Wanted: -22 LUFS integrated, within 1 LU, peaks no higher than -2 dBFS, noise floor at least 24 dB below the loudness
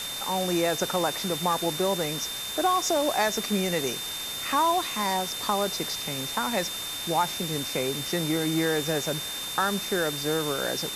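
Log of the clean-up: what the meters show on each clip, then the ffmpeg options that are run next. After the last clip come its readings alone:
steady tone 3.6 kHz; tone level -34 dBFS; noise floor -34 dBFS; noise floor target -51 dBFS; loudness -26.5 LUFS; peak level -11.0 dBFS; loudness target -22.0 LUFS
-> -af "bandreject=f=3600:w=30"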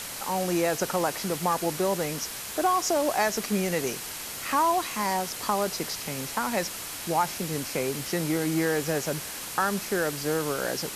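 steady tone not found; noise floor -37 dBFS; noise floor target -52 dBFS
-> -af "afftdn=nr=15:nf=-37"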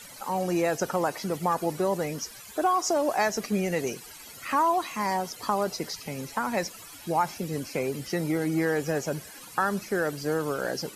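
noise floor -46 dBFS; noise floor target -53 dBFS
-> -af "afftdn=nr=7:nf=-46"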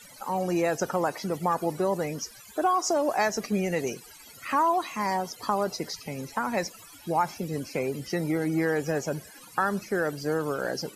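noise floor -49 dBFS; noise floor target -53 dBFS
-> -af "afftdn=nr=6:nf=-49"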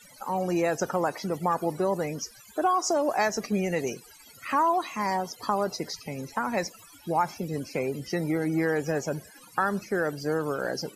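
noise floor -52 dBFS; noise floor target -53 dBFS; loudness -28.5 LUFS; peak level -12.0 dBFS; loudness target -22.0 LUFS
-> -af "volume=2.11"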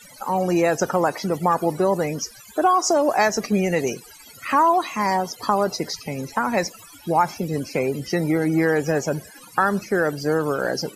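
loudness -22.0 LUFS; peak level -5.5 dBFS; noise floor -46 dBFS

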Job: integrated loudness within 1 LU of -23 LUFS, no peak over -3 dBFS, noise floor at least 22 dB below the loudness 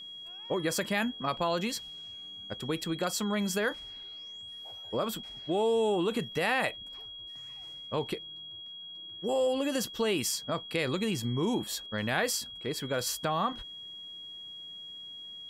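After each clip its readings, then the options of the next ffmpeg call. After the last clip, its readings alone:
steady tone 3.3 kHz; tone level -42 dBFS; loudness -32.5 LUFS; peak level -15.0 dBFS; loudness target -23.0 LUFS
-> -af "bandreject=f=3300:w=30"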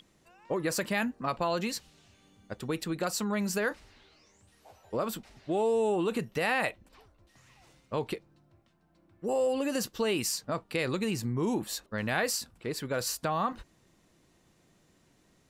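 steady tone not found; loudness -31.5 LUFS; peak level -15.0 dBFS; loudness target -23.0 LUFS
-> -af "volume=2.66"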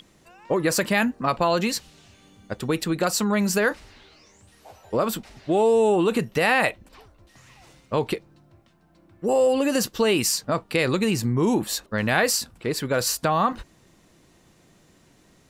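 loudness -23.0 LUFS; peak level -6.5 dBFS; noise floor -58 dBFS

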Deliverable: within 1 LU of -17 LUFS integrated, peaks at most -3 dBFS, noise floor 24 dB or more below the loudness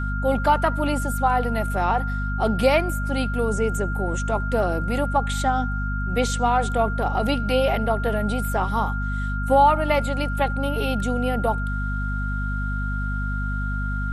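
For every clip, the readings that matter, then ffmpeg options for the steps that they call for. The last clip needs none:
hum 50 Hz; highest harmonic 250 Hz; hum level -23 dBFS; steady tone 1.4 kHz; tone level -30 dBFS; loudness -23.5 LUFS; peak level -6.5 dBFS; loudness target -17.0 LUFS
-> -af "bandreject=f=50:t=h:w=4,bandreject=f=100:t=h:w=4,bandreject=f=150:t=h:w=4,bandreject=f=200:t=h:w=4,bandreject=f=250:t=h:w=4"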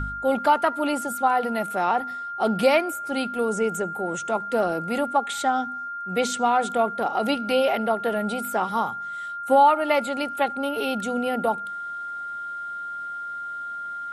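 hum not found; steady tone 1.4 kHz; tone level -30 dBFS
-> -af "bandreject=f=1400:w=30"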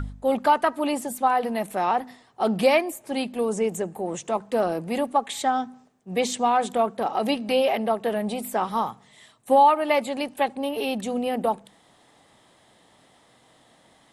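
steady tone not found; loudness -24.5 LUFS; peak level -8.0 dBFS; loudness target -17.0 LUFS
-> -af "volume=2.37,alimiter=limit=0.708:level=0:latency=1"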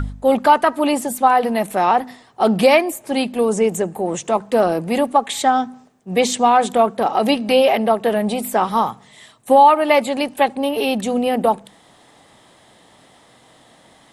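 loudness -17.5 LUFS; peak level -3.0 dBFS; noise floor -51 dBFS

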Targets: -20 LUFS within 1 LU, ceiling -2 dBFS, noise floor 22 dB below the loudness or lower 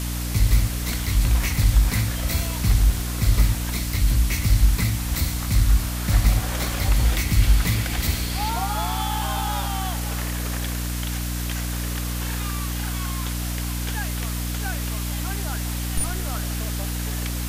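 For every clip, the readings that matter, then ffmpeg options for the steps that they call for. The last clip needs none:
hum 60 Hz; highest harmonic 300 Hz; hum level -25 dBFS; noise floor -27 dBFS; noise floor target -46 dBFS; loudness -24.0 LUFS; peak level -6.5 dBFS; loudness target -20.0 LUFS
-> -af "bandreject=f=60:t=h:w=6,bandreject=f=120:t=h:w=6,bandreject=f=180:t=h:w=6,bandreject=f=240:t=h:w=6,bandreject=f=300:t=h:w=6"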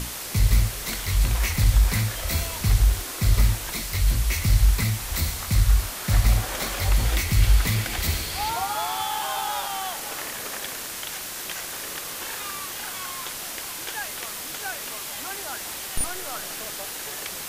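hum not found; noise floor -34 dBFS; noise floor target -48 dBFS
-> -af "afftdn=nr=14:nf=-34"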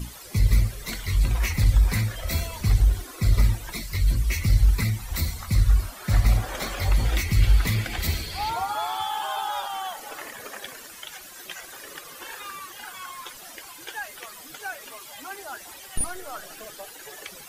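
noise floor -44 dBFS; noise floor target -48 dBFS
-> -af "afftdn=nr=6:nf=-44"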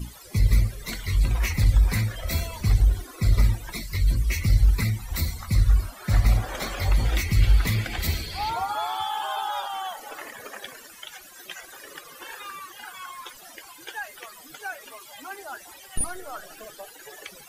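noise floor -47 dBFS; noise floor target -48 dBFS
-> -af "afftdn=nr=6:nf=-47"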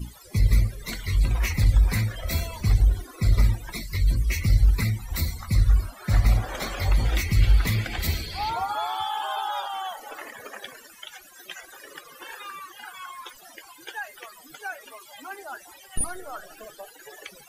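noise floor -50 dBFS; loudness -25.5 LUFS; peak level -8.0 dBFS; loudness target -20.0 LUFS
-> -af "volume=1.88"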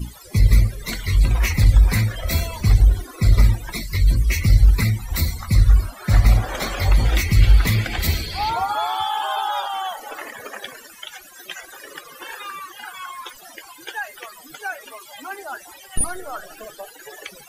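loudness -20.0 LUFS; peak level -2.5 dBFS; noise floor -44 dBFS

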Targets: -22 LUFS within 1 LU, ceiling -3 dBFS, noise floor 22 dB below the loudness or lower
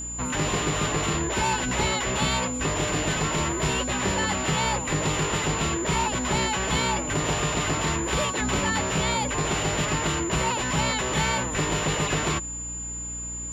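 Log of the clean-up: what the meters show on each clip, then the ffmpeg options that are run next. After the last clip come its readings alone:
hum 60 Hz; highest harmonic 300 Hz; hum level -37 dBFS; steady tone 7.1 kHz; tone level -32 dBFS; loudness -25.0 LUFS; peak level -12.0 dBFS; loudness target -22.0 LUFS
-> -af "bandreject=f=60:t=h:w=4,bandreject=f=120:t=h:w=4,bandreject=f=180:t=h:w=4,bandreject=f=240:t=h:w=4,bandreject=f=300:t=h:w=4"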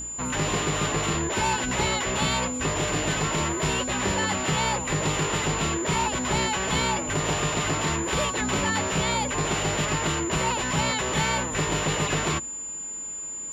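hum not found; steady tone 7.1 kHz; tone level -32 dBFS
-> -af "bandreject=f=7100:w=30"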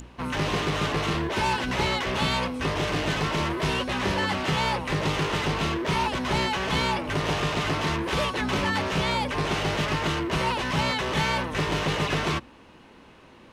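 steady tone not found; loudness -26.0 LUFS; peak level -12.5 dBFS; loudness target -22.0 LUFS
-> -af "volume=1.58"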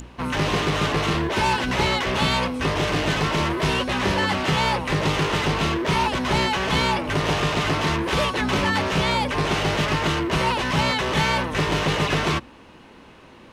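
loudness -22.0 LUFS; peak level -8.5 dBFS; noise floor -47 dBFS

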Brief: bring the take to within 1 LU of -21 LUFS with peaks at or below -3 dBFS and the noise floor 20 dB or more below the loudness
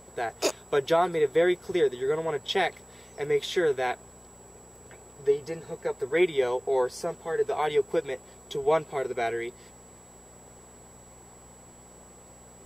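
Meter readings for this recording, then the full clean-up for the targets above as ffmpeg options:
hum 60 Hz; highest harmonic 240 Hz; hum level -54 dBFS; steady tone 7.8 kHz; tone level -53 dBFS; loudness -28.0 LUFS; peak level -11.5 dBFS; loudness target -21.0 LUFS
-> -af "bandreject=f=60:t=h:w=4,bandreject=f=120:t=h:w=4,bandreject=f=180:t=h:w=4,bandreject=f=240:t=h:w=4"
-af "bandreject=f=7800:w=30"
-af "volume=2.24"

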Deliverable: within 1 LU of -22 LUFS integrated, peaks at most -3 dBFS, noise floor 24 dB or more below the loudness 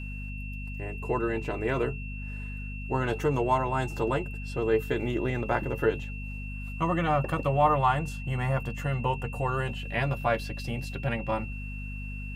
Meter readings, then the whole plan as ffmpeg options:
hum 50 Hz; highest harmonic 250 Hz; hum level -34 dBFS; steady tone 2.7 kHz; tone level -42 dBFS; loudness -29.5 LUFS; peak level -11.5 dBFS; loudness target -22.0 LUFS
-> -af "bandreject=f=50:t=h:w=4,bandreject=f=100:t=h:w=4,bandreject=f=150:t=h:w=4,bandreject=f=200:t=h:w=4,bandreject=f=250:t=h:w=4"
-af "bandreject=f=2700:w=30"
-af "volume=2.37"

